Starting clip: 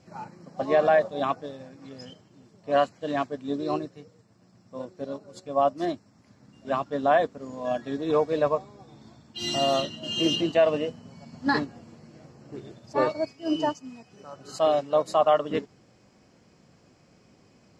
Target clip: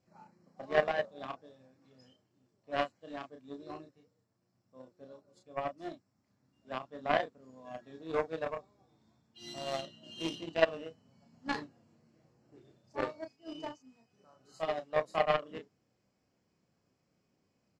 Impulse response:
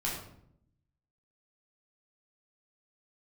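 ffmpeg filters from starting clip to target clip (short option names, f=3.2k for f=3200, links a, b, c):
-filter_complex "[0:a]asplit=2[a][b];[b]adelay=31,volume=-4dB[c];[a][c]amix=inputs=2:normalize=0,aeval=exprs='0.447*(cos(1*acos(clip(val(0)/0.447,-1,1)))-cos(1*PI/2))+0.126*(cos(3*acos(clip(val(0)/0.447,-1,1)))-cos(3*PI/2))':c=same,volume=-3.5dB"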